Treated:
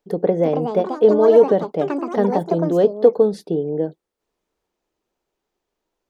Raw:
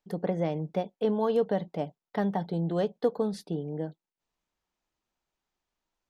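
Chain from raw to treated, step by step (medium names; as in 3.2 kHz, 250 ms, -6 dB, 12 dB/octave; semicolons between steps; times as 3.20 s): ever faster or slower copies 362 ms, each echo +6 st, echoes 2, each echo -6 dB; peaking EQ 420 Hz +12 dB 1.2 oct; trim +3.5 dB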